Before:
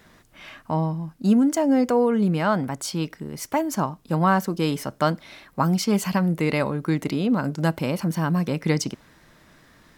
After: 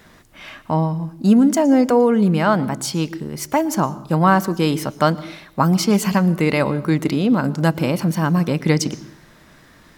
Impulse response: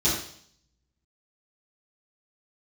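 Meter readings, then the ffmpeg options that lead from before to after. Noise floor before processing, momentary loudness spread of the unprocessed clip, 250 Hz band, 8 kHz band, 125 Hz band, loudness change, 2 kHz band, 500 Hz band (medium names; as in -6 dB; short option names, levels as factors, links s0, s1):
-55 dBFS, 9 LU, +5.0 dB, +5.0 dB, +5.0 dB, +5.0 dB, +5.0 dB, +5.0 dB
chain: -filter_complex "[0:a]asplit=2[s0][s1];[1:a]atrim=start_sample=2205,adelay=109[s2];[s1][s2]afir=irnorm=-1:irlink=0,volume=0.0251[s3];[s0][s3]amix=inputs=2:normalize=0,volume=1.78"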